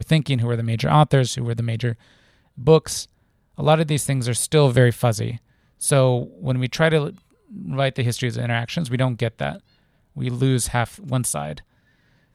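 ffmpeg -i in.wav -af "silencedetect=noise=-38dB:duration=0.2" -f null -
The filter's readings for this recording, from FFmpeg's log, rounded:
silence_start: 1.94
silence_end: 2.58 | silence_duration: 0.63
silence_start: 3.05
silence_end: 3.58 | silence_duration: 0.53
silence_start: 5.38
silence_end: 5.81 | silence_duration: 0.44
silence_start: 7.18
silence_end: 7.51 | silence_duration: 0.33
silence_start: 9.58
silence_end: 10.16 | silence_duration: 0.58
silence_start: 11.61
silence_end: 12.34 | silence_duration: 0.73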